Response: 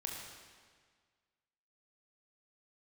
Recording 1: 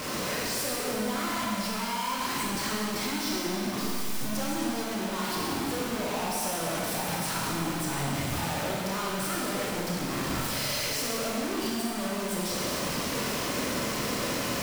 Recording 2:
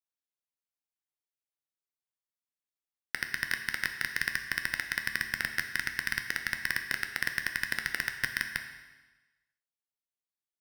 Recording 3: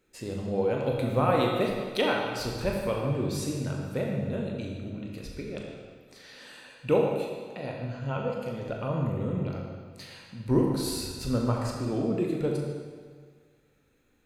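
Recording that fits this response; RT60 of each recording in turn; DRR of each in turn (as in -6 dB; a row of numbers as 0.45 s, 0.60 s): 3; 2.2 s, 1.2 s, 1.7 s; -5.0 dB, 5.5 dB, -1.0 dB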